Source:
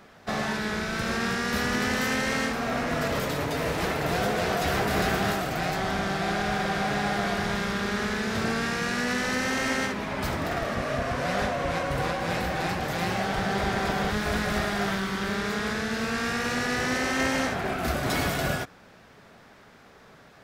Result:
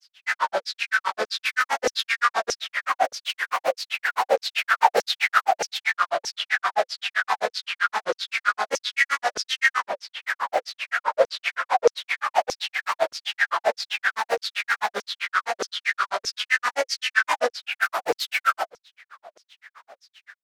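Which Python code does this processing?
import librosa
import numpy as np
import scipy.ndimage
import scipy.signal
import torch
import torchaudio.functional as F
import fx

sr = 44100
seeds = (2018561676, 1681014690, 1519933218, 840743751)

y = fx.granulator(x, sr, seeds[0], grain_ms=88.0, per_s=7.7, spray_ms=100.0, spread_st=3)
y = fx.filter_lfo_highpass(y, sr, shape='saw_down', hz=1.6, low_hz=460.0, high_hz=6000.0, q=7.8)
y = F.gain(torch.from_numpy(y), 3.5).numpy()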